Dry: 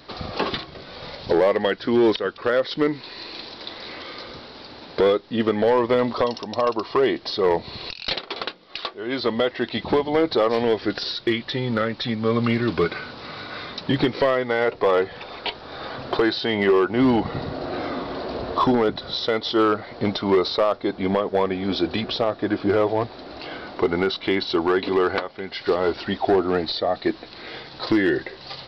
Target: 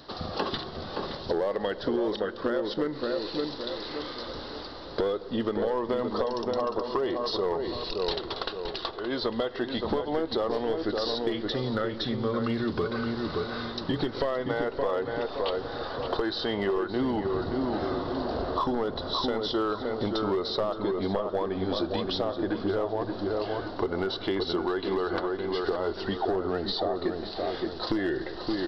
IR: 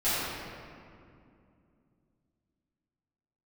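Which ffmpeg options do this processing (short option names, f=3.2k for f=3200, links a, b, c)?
-filter_complex "[0:a]equalizer=f=2.3k:t=o:w=0.41:g=-12.5,bandreject=f=60:t=h:w=6,bandreject=f=120:t=h:w=6,asplit=2[a][b];[1:a]atrim=start_sample=2205,asetrate=57330,aresample=44100[c];[b][c]afir=irnorm=-1:irlink=0,volume=-28.5dB[d];[a][d]amix=inputs=2:normalize=0,asubboost=boost=3:cutoff=72,areverse,acompressor=mode=upward:threshold=-31dB:ratio=2.5,areverse,asplit=2[e][f];[f]adelay=570,lowpass=f=1.7k:p=1,volume=-5.5dB,asplit=2[g][h];[h]adelay=570,lowpass=f=1.7k:p=1,volume=0.4,asplit=2[i][j];[j]adelay=570,lowpass=f=1.7k:p=1,volume=0.4,asplit=2[k][l];[l]adelay=570,lowpass=f=1.7k:p=1,volume=0.4,asplit=2[m][n];[n]adelay=570,lowpass=f=1.7k:p=1,volume=0.4[o];[e][g][i][k][m][o]amix=inputs=6:normalize=0,acompressor=threshold=-22dB:ratio=6,volume=-2.5dB"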